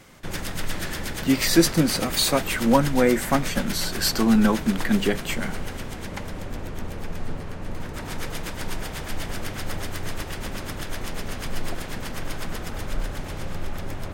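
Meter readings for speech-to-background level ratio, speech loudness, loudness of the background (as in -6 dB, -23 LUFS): 11.0 dB, -22.0 LUFS, -33.0 LUFS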